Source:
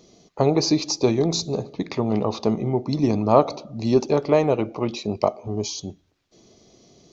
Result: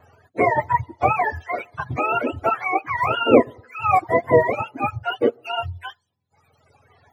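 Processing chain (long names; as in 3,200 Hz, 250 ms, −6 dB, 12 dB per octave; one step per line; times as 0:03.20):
frequency axis turned over on the octave scale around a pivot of 540 Hz
tape wow and flutter 17 cents
reverb reduction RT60 1.8 s
level +5 dB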